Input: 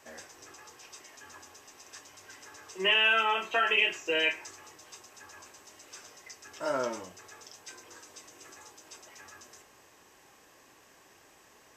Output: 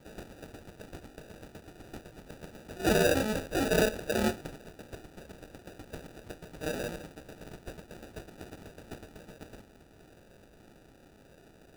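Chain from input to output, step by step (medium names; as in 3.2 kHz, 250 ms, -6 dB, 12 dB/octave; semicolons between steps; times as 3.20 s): pre-emphasis filter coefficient 0.8; sample-and-hold 41×; trim +8.5 dB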